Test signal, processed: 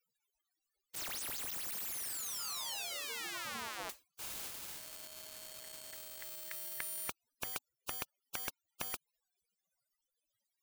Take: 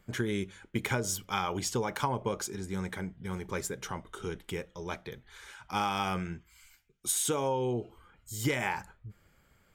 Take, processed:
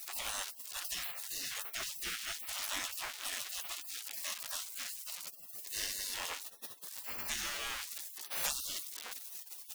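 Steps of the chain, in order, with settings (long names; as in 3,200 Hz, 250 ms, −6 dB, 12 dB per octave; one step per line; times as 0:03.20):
converter with a step at zero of −38 dBFS
hum removal 115.6 Hz, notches 12
in parallel at −1.5 dB: brickwall limiter −24.5 dBFS
on the sum: gate on every frequency bin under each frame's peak −30 dB weak
level +7.5 dB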